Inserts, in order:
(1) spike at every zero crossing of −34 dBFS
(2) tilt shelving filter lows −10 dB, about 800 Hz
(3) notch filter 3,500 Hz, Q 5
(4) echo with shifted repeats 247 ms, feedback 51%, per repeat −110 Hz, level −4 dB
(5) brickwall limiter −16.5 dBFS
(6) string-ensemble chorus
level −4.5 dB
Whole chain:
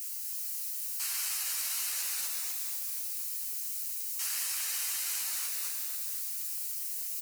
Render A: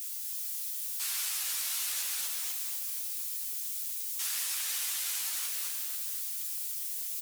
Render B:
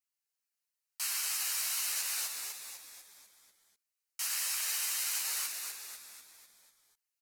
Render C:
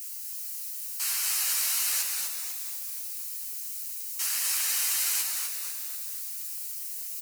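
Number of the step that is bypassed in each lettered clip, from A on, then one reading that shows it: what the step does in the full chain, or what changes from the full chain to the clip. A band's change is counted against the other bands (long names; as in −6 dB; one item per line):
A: 3, 4 kHz band +1.5 dB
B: 1, distortion level −3 dB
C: 5, average gain reduction 1.5 dB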